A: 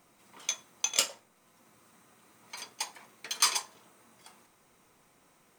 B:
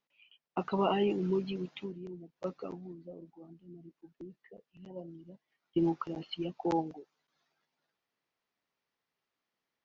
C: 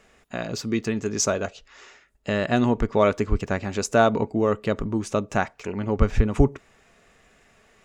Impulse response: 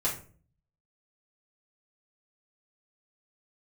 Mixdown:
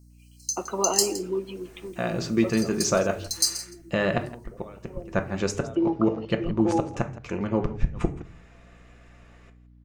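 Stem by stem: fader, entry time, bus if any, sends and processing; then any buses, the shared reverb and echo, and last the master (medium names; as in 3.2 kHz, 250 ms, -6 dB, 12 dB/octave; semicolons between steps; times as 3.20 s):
3.36 s -3 dB -> 3.62 s -13 dB, 0.00 s, send -11.5 dB, echo send -14.5 dB, FFT band-reject 150–4000 Hz
-4.0 dB, 0.00 s, send -18.5 dB, echo send -16 dB, high-pass 250 Hz 24 dB/octave; treble shelf 4.3 kHz -11 dB
-8.0 dB, 1.65 s, send -10.5 dB, echo send -15.5 dB, low-pass 3.5 kHz 6 dB/octave; inverted gate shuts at -12 dBFS, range -28 dB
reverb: on, RT60 0.45 s, pre-delay 3 ms
echo: delay 166 ms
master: level rider gain up to 7.5 dB; hum 60 Hz, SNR 25 dB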